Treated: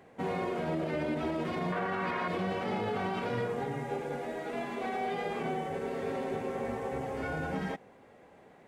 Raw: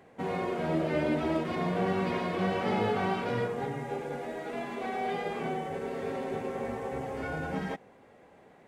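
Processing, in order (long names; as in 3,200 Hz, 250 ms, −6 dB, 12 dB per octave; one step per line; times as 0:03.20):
0:01.72–0:02.28: parametric band 1,400 Hz +13 dB 1.7 octaves
brickwall limiter −24.5 dBFS, peak gain reduction 11.5 dB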